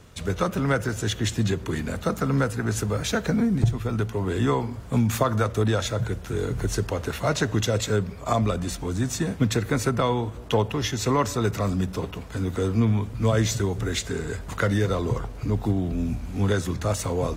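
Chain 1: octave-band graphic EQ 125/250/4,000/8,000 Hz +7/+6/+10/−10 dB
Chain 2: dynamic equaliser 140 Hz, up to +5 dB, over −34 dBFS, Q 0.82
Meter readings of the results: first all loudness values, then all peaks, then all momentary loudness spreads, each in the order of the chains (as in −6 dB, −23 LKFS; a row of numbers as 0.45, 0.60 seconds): −20.0, −23.0 LKFS; −2.0, −4.5 dBFS; 7, 6 LU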